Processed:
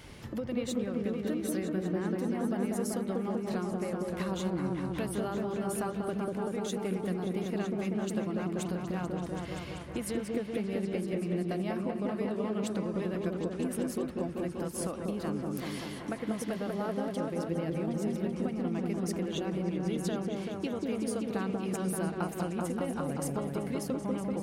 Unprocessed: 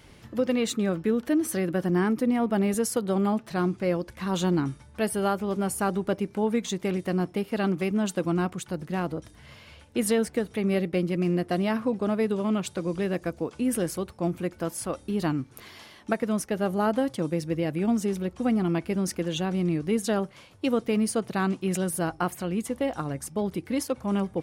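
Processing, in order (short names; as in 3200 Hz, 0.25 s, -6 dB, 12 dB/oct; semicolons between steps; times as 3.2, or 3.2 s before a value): compressor 6:1, threshold -37 dBFS, peak gain reduction 16.5 dB; on a send: repeats that get brighter 0.192 s, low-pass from 750 Hz, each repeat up 1 oct, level 0 dB; on the sum: gain +2.5 dB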